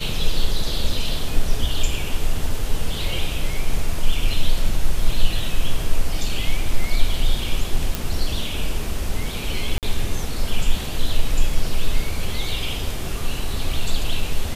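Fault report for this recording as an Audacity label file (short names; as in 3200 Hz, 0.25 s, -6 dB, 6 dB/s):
7.950000	7.950000	pop
9.780000	9.830000	gap 48 ms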